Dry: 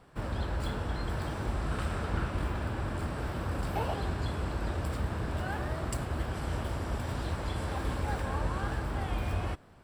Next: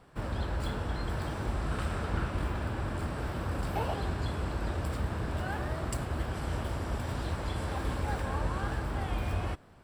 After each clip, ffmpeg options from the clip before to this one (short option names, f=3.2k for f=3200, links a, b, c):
-af anull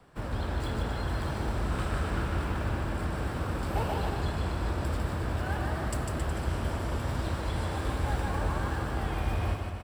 -filter_complex "[0:a]acrossover=split=150|1100|1600[a][b][c][d];[c]acrusher=bits=3:mode=log:mix=0:aa=0.000001[e];[a][b][e][d]amix=inputs=4:normalize=0,aecho=1:1:150|270|366|442.8|504.2:0.631|0.398|0.251|0.158|0.1"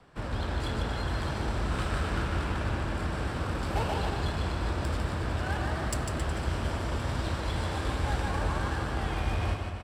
-af "adynamicsmooth=sensitivity=5:basefreq=4k,crystalizer=i=3.5:c=0"